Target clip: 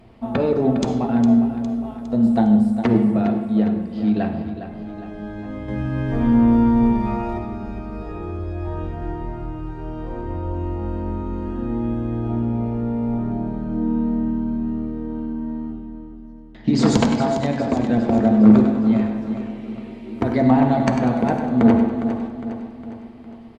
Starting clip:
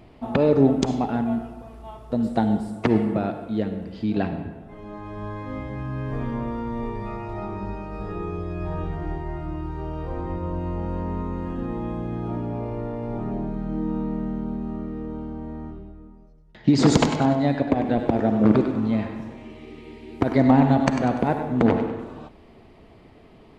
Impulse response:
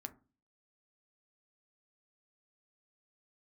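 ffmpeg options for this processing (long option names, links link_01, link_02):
-filter_complex "[0:a]asettb=1/sr,asplit=3[link_01][link_02][link_03];[link_01]atrim=end=5.684[link_04];[link_02]atrim=start=5.68:end=7.38,asetpts=PTS-STARTPTS,afade=type=in:duration=0.004:curve=qsin,afade=type=out:start_time=1.696:duration=0.004:curve=qsin,acontrast=57[link_05];[link_03]atrim=start=7.376[link_06];[link_04][link_05]acrossfade=duration=0.004:curve1=hsin:curve2=qsin[link_07];[link_07][link_06]acrossfade=duration=0.004:curve1=qsin:curve2=hsin,aecho=1:1:408|816|1224|1632|2040|2448:0.299|0.152|0.0776|0.0396|0.0202|0.0103[link_08];[1:a]atrim=start_sample=2205,asetrate=38808,aresample=44100[link_09];[link_08][link_09]afir=irnorm=-1:irlink=0,volume=3.5dB"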